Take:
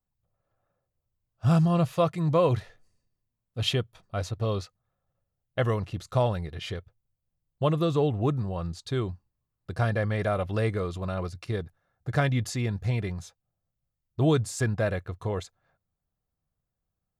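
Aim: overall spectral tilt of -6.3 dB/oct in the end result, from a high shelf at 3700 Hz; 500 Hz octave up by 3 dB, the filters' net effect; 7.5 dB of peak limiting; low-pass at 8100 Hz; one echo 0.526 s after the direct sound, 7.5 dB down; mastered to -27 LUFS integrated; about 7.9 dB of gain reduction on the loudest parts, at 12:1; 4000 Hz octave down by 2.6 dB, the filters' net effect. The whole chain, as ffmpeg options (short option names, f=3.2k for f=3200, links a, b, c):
-af "lowpass=8.1k,equalizer=f=500:t=o:g=3.5,highshelf=f=3.7k:g=3.5,equalizer=f=4k:t=o:g=-5.5,acompressor=threshold=-23dB:ratio=12,alimiter=limit=-22dB:level=0:latency=1,aecho=1:1:526:0.422,volume=6dB"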